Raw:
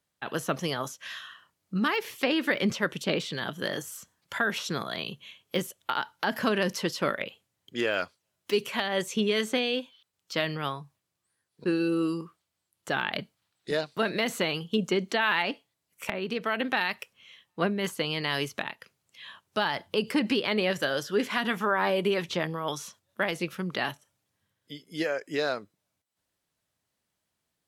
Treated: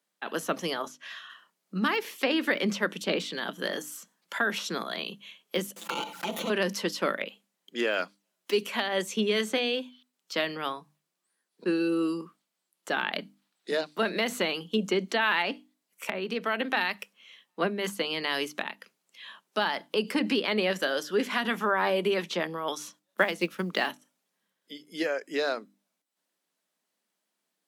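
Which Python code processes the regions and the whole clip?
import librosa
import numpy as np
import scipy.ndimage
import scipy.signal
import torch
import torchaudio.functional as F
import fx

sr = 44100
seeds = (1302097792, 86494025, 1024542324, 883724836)

y = fx.chain(x, sr, fx.high_shelf(hz=6900.0, db=-10.5),
    fx.notch_comb(f0_hz=260.0), at=(0.82, 1.3))
y = fx.chain(y, sr, fx.lower_of_two(delay_ms=5.9),
    fx.env_flanger(rest_ms=10.0, full_db=-31.5),
    fx.env_flatten(amount_pct=70), at=(5.76, 6.5))
y = fx.chain(y, sr, fx.block_float(bits=7),
    fx.transient(attack_db=6, sustain_db=-3), at=(22.81, 23.88))
y = scipy.signal.sosfilt(scipy.signal.butter(8, 180.0, 'highpass', fs=sr, output='sos'), y)
y = fx.hum_notches(y, sr, base_hz=50, count=6)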